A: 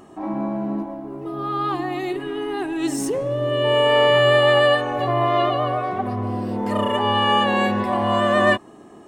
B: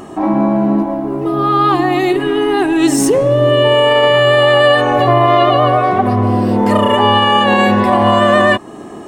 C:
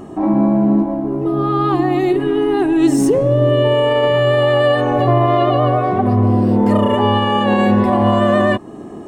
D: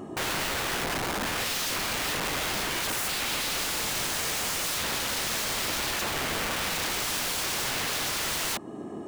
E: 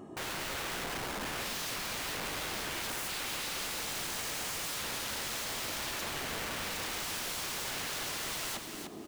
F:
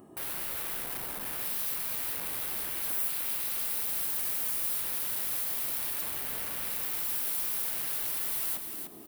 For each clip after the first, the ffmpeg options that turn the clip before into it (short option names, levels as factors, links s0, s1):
-filter_complex "[0:a]asplit=2[s0][s1];[s1]acompressor=threshold=0.0447:ratio=6,volume=0.794[s2];[s0][s2]amix=inputs=2:normalize=0,alimiter=level_in=3.16:limit=0.891:release=50:level=0:latency=1,volume=0.891"
-af "tiltshelf=f=660:g=5.5,volume=0.631"
-af "highpass=f=100:p=1,aeval=exprs='(mod(9.44*val(0)+1,2)-1)/9.44':c=same,volume=0.531"
-af "aecho=1:1:300|600|900:0.473|0.118|0.0296,volume=0.376"
-af "aexciter=amount=7.4:drive=3.2:freq=9300,volume=0.531"